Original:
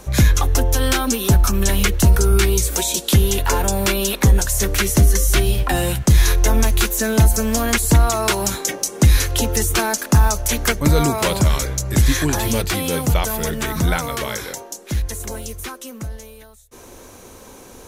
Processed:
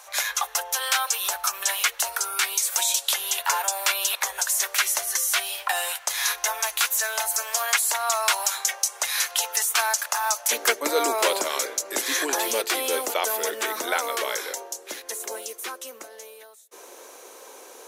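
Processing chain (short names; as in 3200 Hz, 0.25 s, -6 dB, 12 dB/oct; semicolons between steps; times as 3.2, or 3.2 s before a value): inverse Chebyshev high-pass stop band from 280 Hz, stop band 50 dB, from 10.5 s stop band from 150 Hz; gain -1.5 dB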